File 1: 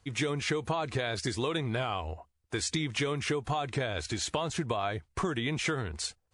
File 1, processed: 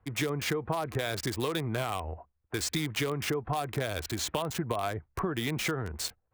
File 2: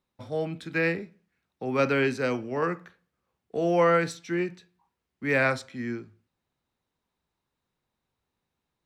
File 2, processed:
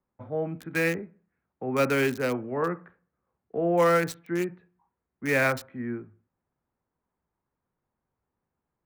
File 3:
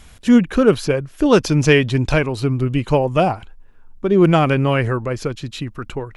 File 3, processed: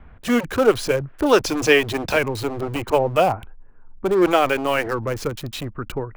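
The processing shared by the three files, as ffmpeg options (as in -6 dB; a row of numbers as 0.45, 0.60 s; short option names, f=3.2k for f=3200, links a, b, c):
-filter_complex "[0:a]acrossover=split=280|1100|1900[a][b][c][d];[a]aeval=exprs='0.0531*(abs(mod(val(0)/0.0531+3,4)-2)-1)':c=same[e];[d]acrusher=bits=5:mix=0:aa=0.000001[f];[e][b][c][f]amix=inputs=4:normalize=0"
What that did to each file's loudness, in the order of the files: 0.0, 0.0, -3.5 LU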